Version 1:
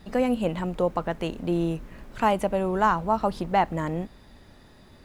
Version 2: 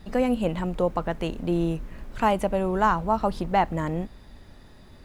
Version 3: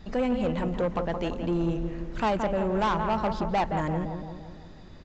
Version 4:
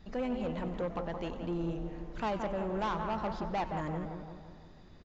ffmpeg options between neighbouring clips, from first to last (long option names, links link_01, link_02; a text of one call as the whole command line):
ffmpeg -i in.wav -af "lowshelf=frequency=75:gain=7.5" out.wav
ffmpeg -i in.wav -filter_complex "[0:a]asplit=2[link_01][link_02];[link_02]adelay=171,lowpass=frequency=2000:poles=1,volume=-8dB,asplit=2[link_03][link_04];[link_04]adelay=171,lowpass=frequency=2000:poles=1,volume=0.55,asplit=2[link_05][link_06];[link_06]adelay=171,lowpass=frequency=2000:poles=1,volume=0.55,asplit=2[link_07][link_08];[link_08]adelay=171,lowpass=frequency=2000:poles=1,volume=0.55,asplit=2[link_09][link_10];[link_10]adelay=171,lowpass=frequency=2000:poles=1,volume=0.55,asplit=2[link_11][link_12];[link_12]adelay=171,lowpass=frequency=2000:poles=1,volume=0.55,asplit=2[link_13][link_14];[link_14]adelay=171,lowpass=frequency=2000:poles=1,volume=0.55[link_15];[link_01][link_03][link_05][link_07][link_09][link_11][link_13][link_15]amix=inputs=8:normalize=0,aresample=16000,asoftclip=type=tanh:threshold=-20dB,aresample=44100" out.wav
ffmpeg -i in.wav -filter_complex "[0:a]asplit=7[link_01][link_02][link_03][link_04][link_05][link_06][link_07];[link_02]adelay=93,afreqshift=140,volume=-16.5dB[link_08];[link_03]adelay=186,afreqshift=280,volume=-21.1dB[link_09];[link_04]adelay=279,afreqshift=420,volume=-25.7dB[link_10];[link_05]adelay=372,afreqshift=560,volume=-30.2dB[link_11];[link_06]adelay=465,afreqshift=700,volume=-34.8dB[link_12];[link_07]adelay=558,afreqshift=840,volume=-39.4dB[link_13];[link_01][link_08][link_09][link_10][link_11][link_12][link_13]amix=inputs=7:normalize=0,aresample=16000,aresample=44100,volume=-8dB" out.wav